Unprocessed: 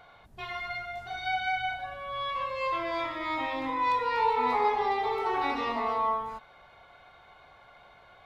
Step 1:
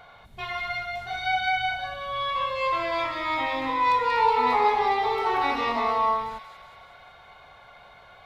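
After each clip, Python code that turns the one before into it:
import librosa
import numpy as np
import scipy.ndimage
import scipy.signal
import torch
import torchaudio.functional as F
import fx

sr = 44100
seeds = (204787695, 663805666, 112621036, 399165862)

y = fx.peak_eq(x, sr, hz=320.0, db=-5.0, octaves=0.57)
y = fx.echo_wet_highpass(y, sr, ms=185, feedback_pct=60, hz=3000.0, wet_db=-5)
y = F.gain(torch.from_numpy(y), 5.0).numpy()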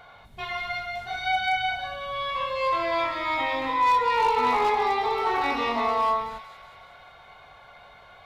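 y = np.clip(10.0 ** (17.0 / 20.0) * x, -1.0, 1.0) / 10.0 ** (17.0 / 20.0)
y = fx.doubler(y, sr, ms=21.0, db=-11.0)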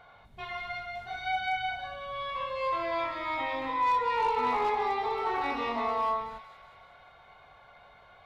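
y = fx.high_shelf(x, sr, hz=3800.0, db=-7.0)
y = F.gain(torch.from_numpy(y), -5.0).numpy()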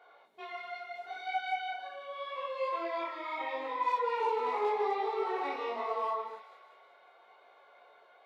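y = fx.ladder_highpass(x, sr, hz=340.0, resonance_pct=50)
y = fx.detune_double(y, sr, cents=27)
y = F.gain(torch.from_numpy(y), 7.0).numpy()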